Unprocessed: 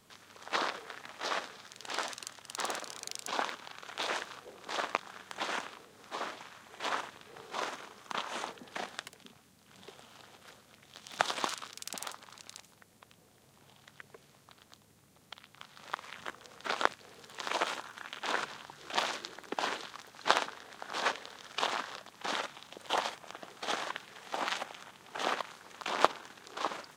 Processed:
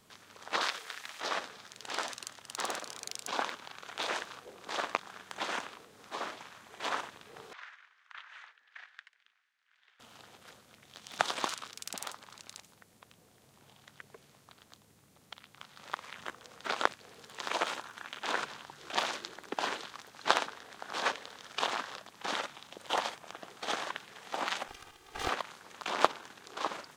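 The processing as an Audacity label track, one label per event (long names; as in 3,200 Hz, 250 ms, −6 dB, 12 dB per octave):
0.610000	1.210000	tilt shelving filter lows −8 dB, about 1,200 Hz
7.530000	10.000000	four-pole ladder band-pass 2,000 Hz, resonance 50%
24.680000	25.290000	lower of the sound and its delayed copy delay 2.5 ms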